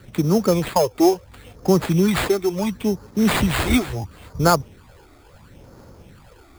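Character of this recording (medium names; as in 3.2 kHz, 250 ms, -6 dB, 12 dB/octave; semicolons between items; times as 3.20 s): phasing stages 12, 0.73 Hz, lowest notch 160–3500 Hz; aliases and images of a low sample rate 5.8 kHz, jitter 0%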